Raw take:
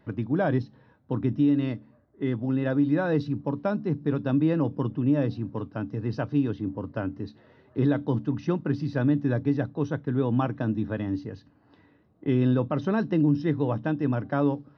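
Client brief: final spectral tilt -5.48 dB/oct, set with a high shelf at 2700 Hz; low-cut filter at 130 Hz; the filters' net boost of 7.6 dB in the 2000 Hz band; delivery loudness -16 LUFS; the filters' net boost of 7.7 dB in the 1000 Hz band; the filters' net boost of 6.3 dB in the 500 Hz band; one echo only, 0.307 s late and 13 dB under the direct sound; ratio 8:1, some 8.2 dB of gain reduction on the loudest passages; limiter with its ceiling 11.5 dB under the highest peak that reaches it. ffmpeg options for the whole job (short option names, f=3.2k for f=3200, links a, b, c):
-af "highpass=130,equalizer=f=500:t=o:g=6,equalizer=f=1k:t=o:g=6.5,equalizer=f=2k:t=o:g=9,highshelf=f=2.7k:g=-5,acompressor=threshold=-24dB:ratio=8,alimiter=limit=-24dB:level=0:latency=1,aecho=1:1:307:0.224,volume=18dB"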